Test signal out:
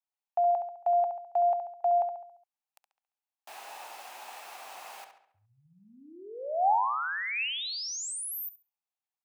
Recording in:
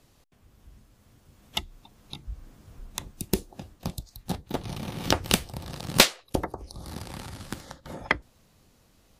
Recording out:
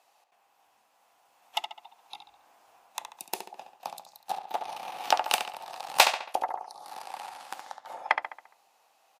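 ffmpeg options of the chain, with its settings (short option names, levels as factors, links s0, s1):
-filter_complex "[0:a]highpass=f=790:t=q:w=4.9,equalizer=f=2600:t=o:w=0.25:g=5.5,asplit=2[s0][s1];[s1]adelay=69,lowpass=f=4400:p=1,volume=0.447,asplit=2[s2][s3];[s3]adelay=69,lowpass=f=4400:p=1,volume=0.49,asplit=2[s4][s5];[s5]adelay=69,lowpass=f=4400:p=1,volume=0.49,asplit=2[s6][s7];[s7]adelay=69,lowpass=f=4400:p=1,volume=0.49,asplit=2[s8][s9];[s9]adelay=69,lowpass=f=4400:p=1,volume=0.49,asplit=2[s10][s11];[s11]adelay=69,lowpass=f=4400:p=1,volume=0.49[s12];[s2][s4][s6][s8][s10][s12]amix=inputs=6:normalize=0[s13];[s0][s13]amix=inputs=2:normalize=0,volume=0.562"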